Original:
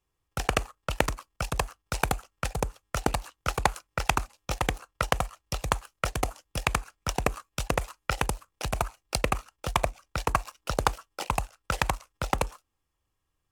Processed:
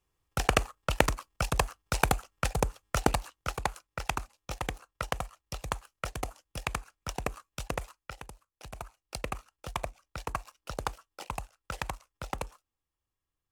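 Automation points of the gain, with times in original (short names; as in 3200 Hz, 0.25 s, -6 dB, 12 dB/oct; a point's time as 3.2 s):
3.06 s +1 dB
3.62 s -7 dB
7.86 s -7 dB
8.25 s -19 dB
9.29 s -9 dB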